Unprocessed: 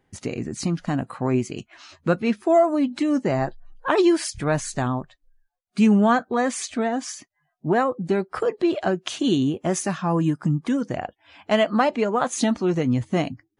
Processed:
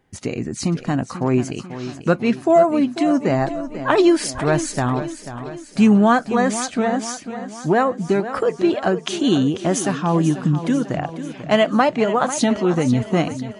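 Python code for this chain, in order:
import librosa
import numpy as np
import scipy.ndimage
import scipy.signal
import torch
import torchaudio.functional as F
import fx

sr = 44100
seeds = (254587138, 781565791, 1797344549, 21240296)

y = fx.echo_warbled(x, sr, ms=492, feedback_pct=55, rate_hz=2.8, cents=64, wet_db=-12)
y = F.gain(torch.from_numpy(y), 3.5).numpy()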